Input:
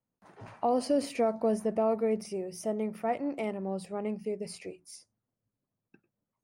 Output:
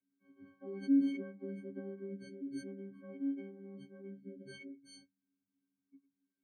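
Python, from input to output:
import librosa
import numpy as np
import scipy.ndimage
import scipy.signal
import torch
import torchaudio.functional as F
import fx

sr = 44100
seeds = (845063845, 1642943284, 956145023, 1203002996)

y = fx.freq_snap(x, sr, grid_st=6)
y = fx.pitch_keep_formants(y, sr, semitones=-2.0)
y = fx.vowel_filter(y, sr, vowel='i')
y = y * librosa.db_to_amplitude(1.0)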